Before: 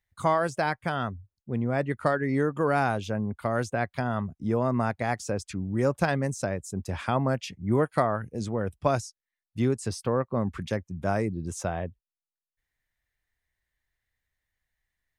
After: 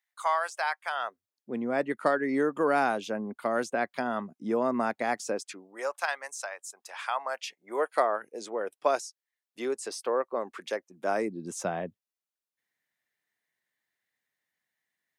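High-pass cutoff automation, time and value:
high-pass 24 dB/octave
0.89 s 770 Hz
1.52 s 230 Hz
5.27 s 230 Hz
6.01 s 790 Hz
7.14 s 790 Hz
8.05 s 370 Hz
10.80 s 370 Hz
11.70 s 170 Hz

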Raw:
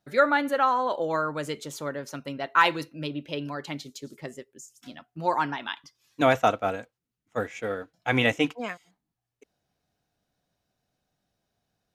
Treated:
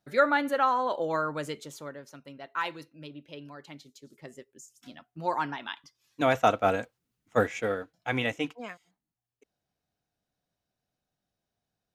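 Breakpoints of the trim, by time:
1.39 s -2 dB
2.13 s -11.5 dB
4.02 s -11.5 dB
4.48 s -4 dB
6.27 s -4 dB
6.79 s +5 dB
7.43 s +5 dB
8.25 s -7 dB

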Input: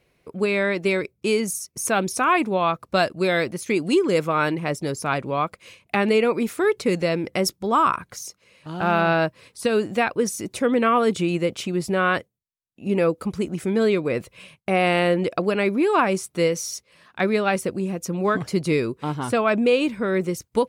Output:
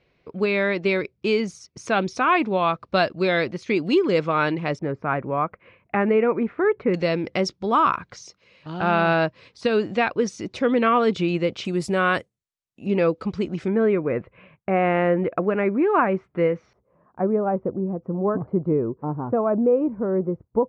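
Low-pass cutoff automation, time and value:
low-pass 24 dB/octave
4.9 kHz
from 4.79 s 2 kHz
from 6.94 s 5.2 kHz
from 11.65 s 9.4 kHz
from 12.86 s 5.2 kHz
from 13.68 s 2 kHz
from 16.73 s 1 kHz

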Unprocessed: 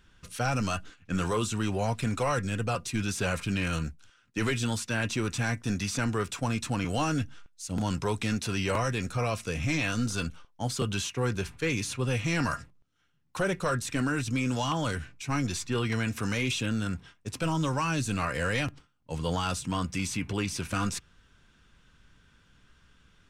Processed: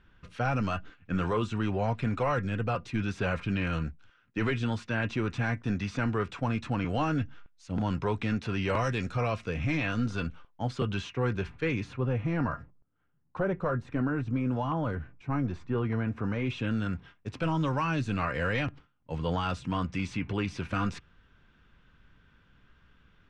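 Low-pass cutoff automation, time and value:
8.60 s 2.5 kHz
8.88 s 4.6 kHz
9.51 s 2.6 kHz
11.64 s 2.6 kHz
12.15 s 1.2 kHz
16.31 s 1.2 kHz
16.74 s 2.8 kHz

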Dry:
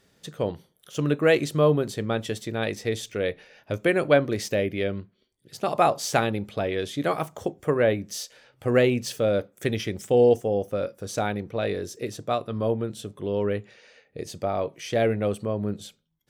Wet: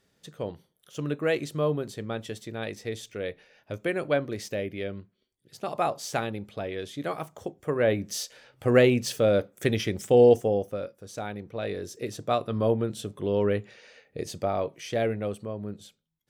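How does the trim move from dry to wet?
7.62 s -6.5 dB
8.02 s +1 dB
10.46 s +1 dB
11.01 s -10 dB
12.43 s +1 dB
14.23 s +1 dB
15.57 s -7.5 dB

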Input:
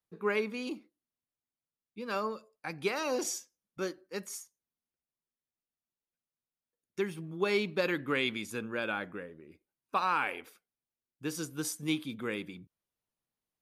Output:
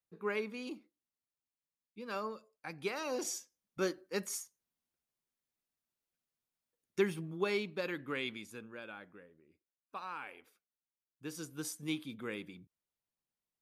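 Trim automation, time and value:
3.09 s -5.5 dB
3.90 s +2 dB
7.09 s +2 dB
7.71 s -7.5 dB
8.28 s -7.5 dB
8.88 s -14 dB
10.32 s -14 dB
11.61 s -5.5 dB

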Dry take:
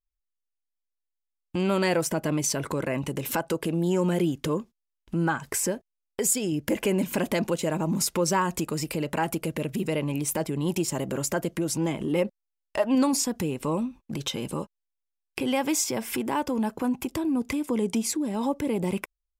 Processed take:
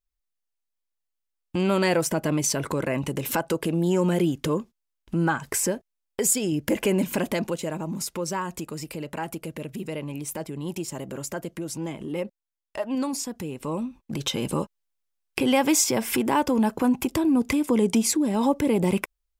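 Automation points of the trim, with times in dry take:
7.03 s +2 dB
7.94 s -5 dB
13.43 s -5 dB
14.49 s +5 dB

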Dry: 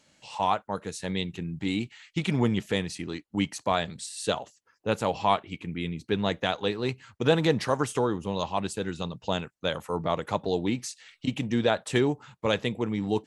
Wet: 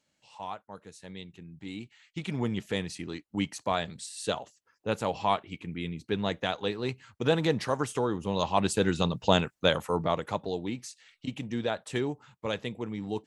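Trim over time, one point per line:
1.48 s -13 dB
2.84 s -3 dB
8.02 s -3 dB
8.81 s +6 dB
9.58 s +6 dB
10.61 s -6.5 dB

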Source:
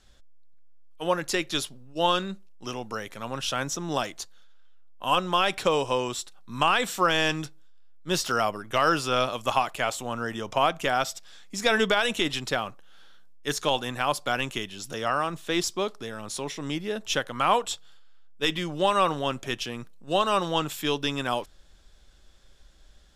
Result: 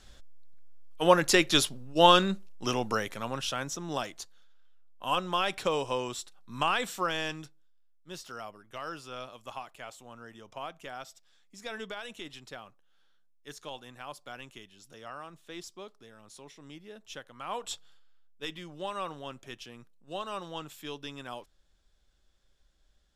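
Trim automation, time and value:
2.91 s +4.5 dB
3.60 s -5.5 dB
6.78 s -5.5 dB
8.12 s -17 dB
17.46 s -17 dB
17.73 s -5 dB
18.55 s -13.5 dB

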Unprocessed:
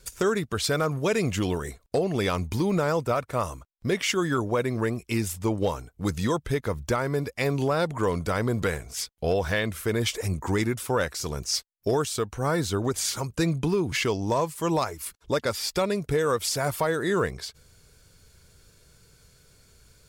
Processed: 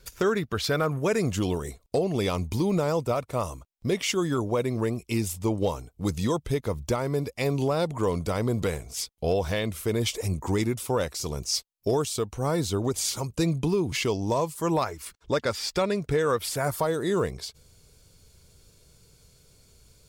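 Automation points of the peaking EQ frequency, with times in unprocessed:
peaking EQ -9 dB 0.71 oct
0.68 s 8.5 kHz
1.49 s 1.6 kHz
14.50 s 1.6 kHz
14.94 s 12 kHz
16.27 s 12 kHz
16.91 s 1.6 kHz

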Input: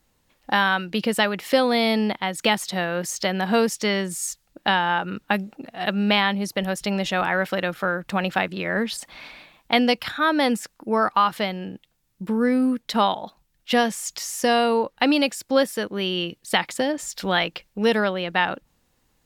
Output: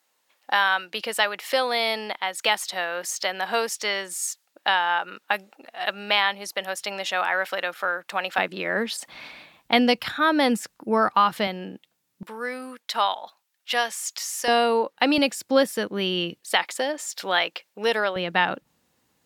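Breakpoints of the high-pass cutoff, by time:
620 Hz
from 8.38 s 270 Hz
from 9.08 s 77 Hz
from 11.47 s 210 Hz
from 12.23 s 790 Hz
from 14.48 s 280 Hz
from 15.18 s 120 Hz
from 16.41 s 470 Hz
from 18.16 s 120 Hz

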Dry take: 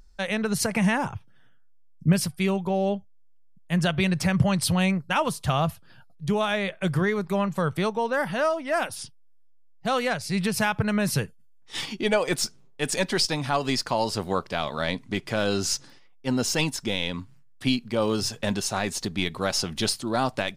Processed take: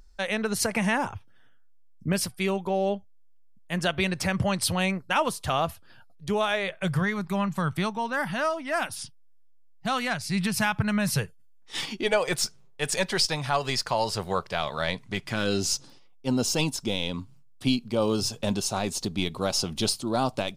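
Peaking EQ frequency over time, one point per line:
peaking EQ -10.5 dB 0.65 oct
6.35 s 150 Hz
7.26 s 480 Hz
10.95 s 480 Hz
11.83 s 75 Hz
12.16 s 270 Hz
15.15 s 270 Hz
15.71 s 1.8 kHz

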